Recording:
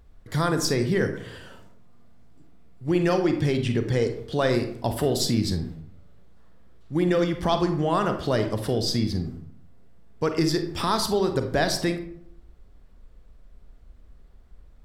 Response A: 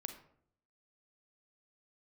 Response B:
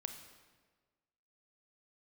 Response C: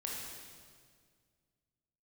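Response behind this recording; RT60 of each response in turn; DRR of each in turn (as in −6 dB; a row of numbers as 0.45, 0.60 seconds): A; 0.65, 1.4, 1.9 seconds; 6.5, 6.0, −3.5 decibels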